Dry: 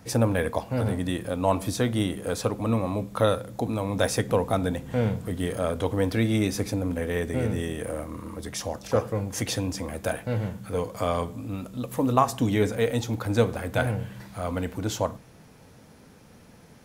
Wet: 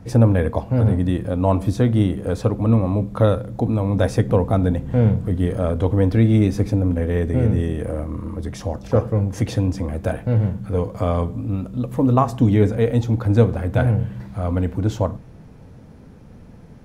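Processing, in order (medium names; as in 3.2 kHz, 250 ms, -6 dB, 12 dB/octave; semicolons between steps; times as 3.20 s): tilt EQ -3 dB/octave; trim +1.5 dB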